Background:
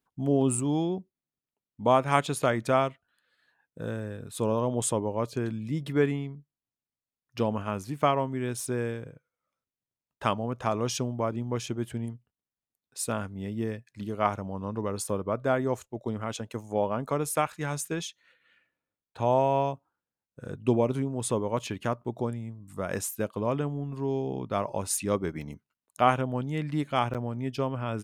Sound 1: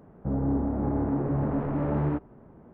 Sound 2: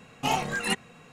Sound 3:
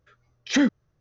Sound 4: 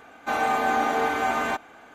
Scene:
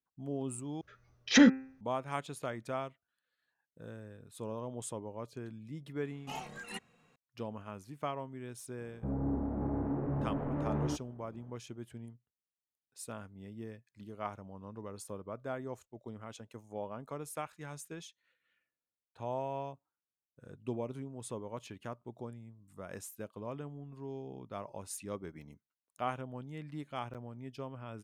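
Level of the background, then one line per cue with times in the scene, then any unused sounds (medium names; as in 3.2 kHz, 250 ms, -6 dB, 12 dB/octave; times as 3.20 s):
background -13.5 dB
0.81 s: replace with 3 -0.5 dB + de-hum 131.9 Hz, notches 21
6.04 s: add 2 -16 dB
8.78 s: add 1 -7.5 dB
not used: 4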